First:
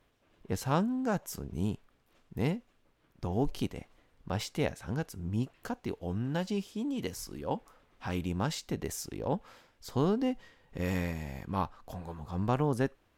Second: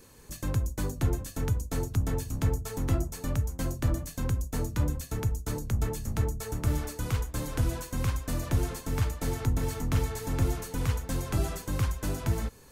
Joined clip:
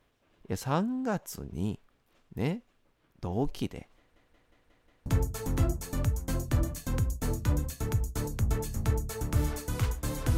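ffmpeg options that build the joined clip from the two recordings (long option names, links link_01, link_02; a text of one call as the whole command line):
ffmpeg -i cue0.wav -i cue1.wav -filter_complex "[0:a]apad=whole_dur=10.37,atrim=end=10.37,asplit=6[link_01][link_02][link_03][link_04][link_05][link_06];[link_01]atrim=end=4.162[link_07];[link_02]atrim=start=3.978:end=4.162[link_08];[link_03]atrim=start=3.978:end=4.162[link_09];[link_04]atrim=start=3.978:end=4.162[link_10];[link_05]atrim=start=3.978:end=4.162[link_11];[link_06]atrim=start=3.978:end=4.162[link_12];[1:a]atrim=start=2.368:end=7.68[link_13];[link_07][link_08]acrossfade=duration=0.004:curve1=hsin:curve2=hsin[link_14];[link_14][link_09]acrossfade=duration=0.004:curve1=hsin:curve2=hsin[link_15];[link_15][link_10]acrossfade=duration=0.004:curve1=hsin:curve2=hsin[link_16];[link_16][link_11]acrossfade=duration=0.004:curve1=hsin:curve2=hsin[link_17];[link_17][link_12]acrossfade=duration=0.004:curve1=hsin:curve2=hsin[link_18];[link_18][link_13]acrossfade=duration=0.004:curve1=hsin:curve2=hsin" out.wav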